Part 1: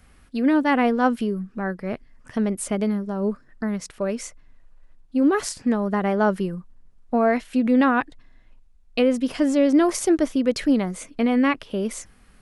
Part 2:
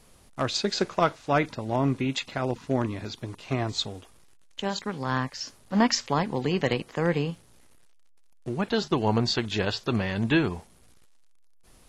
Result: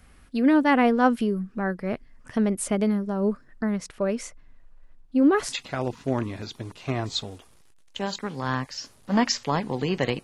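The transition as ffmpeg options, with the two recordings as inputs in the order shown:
ffmpeg -i cue0.wav -i cue1.wav -filter_complex "[0:a]asettb=1/sr,asplit=3[link_01][link_02][link_03];[link_01]atrim=end=3.604[link_04];[link_02]atrim=start=3.6:end=5.56,asetpts=PTS-STARTPTS,afade=type=in:duration=0.004:curve=qsin,afade=type=out:start_time=1.956:duration=0.004:curve=qsin,highshelf=frequency=5400:gain=-5[link_05];[link_03]atrim=start=5.556[link_06];[link_04][link_05]acrossfade=duration=0.004:curve1=hsin:curve2=qsin[link_07];[link_07][link_06]acrossfade=duration=0.004:curve1=qsin:curve2=hsin,apad=whole_dur=10.23,atrim=end=10.23,atrim=end=5.56,asetpts=PTS-STARTPTS[link_08];[1:a]atrim=start=2.11:end=6.86,asetpts=PTS-STARTPTS[link_09];[link_08][link_09]acrossfade=duration=0.08:curve1=tri:curve2=tri" out.wav

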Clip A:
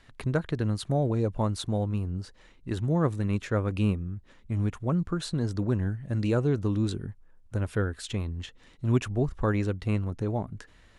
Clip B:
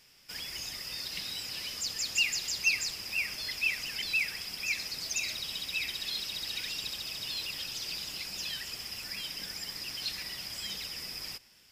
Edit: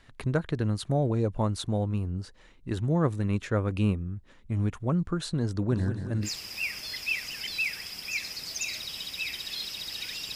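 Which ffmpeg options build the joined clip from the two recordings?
ffmpeg -i cue0.wav -i cue1.wav -filter_complex "[0:a]asplit=3[link_01][link_02][link_03];[link_01]afade=type=out:start_time=5.7:duration=0.02[link_04];[link_02]aecho=1:1:186|372|558|744|930|1116:0.355|0.195|0.107|0.059|0.0325|0.0179,afade=type=in:start_time=5.7:duration=0.02,afade=type=out:start_time=6.29:duration=0.02[link_05];[link_03]afade=type=in:start_time=6.29:duration=0.02[link_06];[link_04][link_05][link_06]amix=inputs=3:normalize=0,apad=whole_dur=10.35,atrim=end=10.35,atrim=end=6.29,asetpts=PTS-STARTPTS[link_07];[1:a]atrim=start=2.76:end=6.9,asetpts=PTS-STARTPTS[link_08];[link_07][link_08]acrossfade=duration=0.08:curve1=tri:curve2=tri" out.wav

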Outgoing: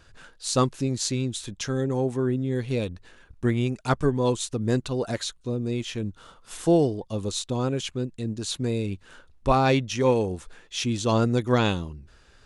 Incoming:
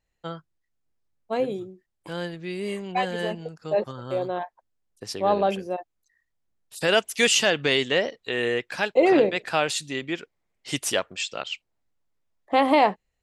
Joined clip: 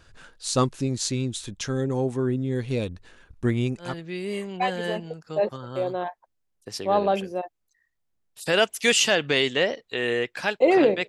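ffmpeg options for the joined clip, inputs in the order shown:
ffmpeg -i cue0.wav -i cue1.wav -filter_complex "[0:a]apad=whole_dur=11.08,atrim=end=11.08,atrim=end=3.97,asetpts=PTS-STARTPTS[link_01];[1:a]atrim=start=2.12:end=9.43,asetpts=PTS-STARTPTS[link_02];[link_01][link_02]acrossfade=duration=0.2:curve1=tri:curve2=tri" out.wav

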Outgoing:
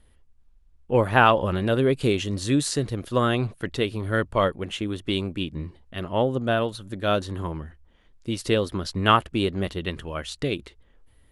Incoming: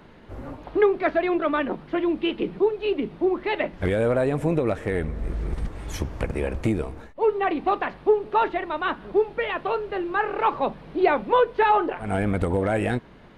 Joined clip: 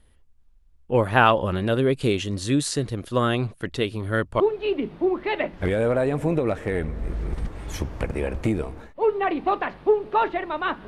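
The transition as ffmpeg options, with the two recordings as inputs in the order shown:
ffmpeg -i cue0.wav -i cue1.wav -filter_complex "[0:a]apad=whole_dur=10.87,atrim=end=10.87,atrim=end=4.402[link_01];[1:a]atrim=start=2.598:end=9.07[link_02];[link_01][link_02]acrossfade=duration=0.004:curve1=hsin:curve2=hsin" out.wav

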